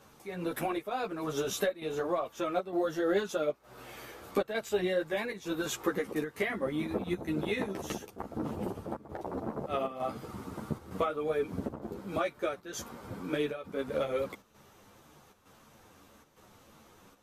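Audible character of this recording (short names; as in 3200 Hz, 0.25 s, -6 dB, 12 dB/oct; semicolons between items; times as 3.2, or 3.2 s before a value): chopped level 1.1 Hz, depth 60%, duty 85%; a shimmering, thickened sound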